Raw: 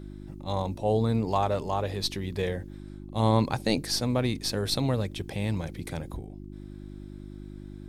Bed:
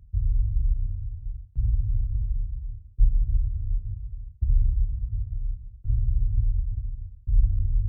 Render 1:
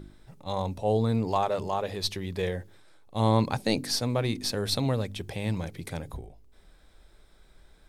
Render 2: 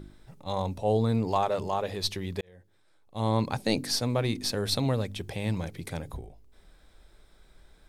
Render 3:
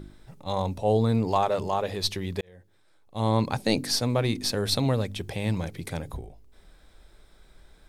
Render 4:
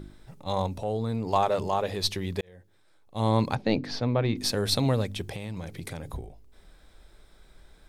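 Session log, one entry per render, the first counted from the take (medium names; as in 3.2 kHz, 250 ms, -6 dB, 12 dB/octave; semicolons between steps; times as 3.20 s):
de-hum 50 Hz, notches 7
2.41–3.77 s: fade in
trim +2.5 dB
0.66–1.33 s: compression 2:1, threshold -30 dBFS; 3.55–4.37 s: distance through air 240 m; 5.26–6.05 s: compression, threshold -31 dBFS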